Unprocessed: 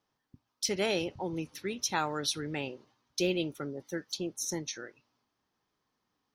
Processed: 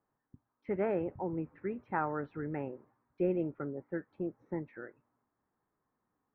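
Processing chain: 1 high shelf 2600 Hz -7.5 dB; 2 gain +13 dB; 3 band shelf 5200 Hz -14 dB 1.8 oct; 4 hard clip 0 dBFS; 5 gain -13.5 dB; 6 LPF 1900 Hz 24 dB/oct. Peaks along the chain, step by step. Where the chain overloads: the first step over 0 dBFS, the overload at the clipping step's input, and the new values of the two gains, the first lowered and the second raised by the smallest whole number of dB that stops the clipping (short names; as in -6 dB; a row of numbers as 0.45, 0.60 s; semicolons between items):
-17.5, -4.5, -4.0, -4.0, -17.5, -18.0 dBFS; no overload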